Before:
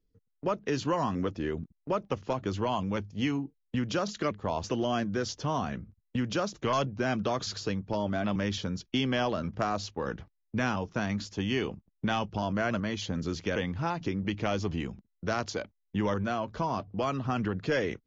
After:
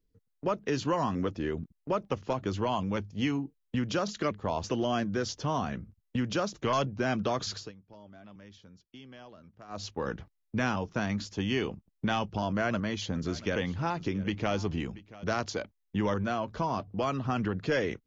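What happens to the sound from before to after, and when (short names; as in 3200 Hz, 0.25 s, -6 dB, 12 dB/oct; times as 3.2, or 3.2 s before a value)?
7.53–9.87 dip -21 dB, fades 0.19 s
12.48–15.24 echo 0.683 s -19 dB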